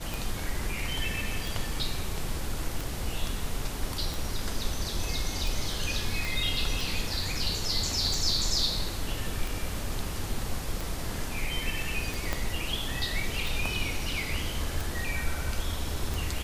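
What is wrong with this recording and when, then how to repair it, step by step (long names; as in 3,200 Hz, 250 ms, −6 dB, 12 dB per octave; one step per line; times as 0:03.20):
scratch tick 45 rpm
0:06.25: click
0:12.33: click −13 dBFS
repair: click removal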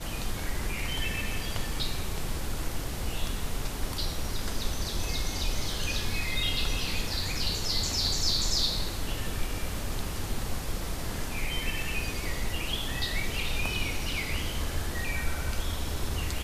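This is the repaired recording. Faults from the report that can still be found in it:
0:06.25: click
0:12.33: click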